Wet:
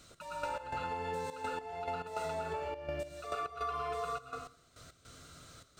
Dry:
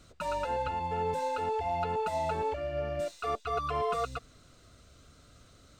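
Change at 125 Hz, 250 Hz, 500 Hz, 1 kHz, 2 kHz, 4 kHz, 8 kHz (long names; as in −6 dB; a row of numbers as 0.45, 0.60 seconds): −8.0, −5.5, −7.0, −6.0, −2.0, −3.5, −1.5 decibels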